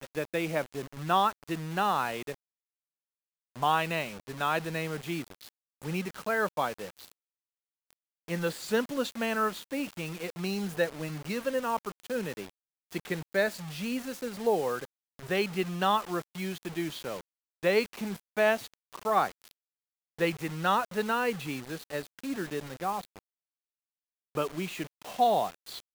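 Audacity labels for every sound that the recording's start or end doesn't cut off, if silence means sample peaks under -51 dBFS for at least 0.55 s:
3.560000	7.120000	sound
7.910000	19.510000	sound
20.190000	23.190000	sound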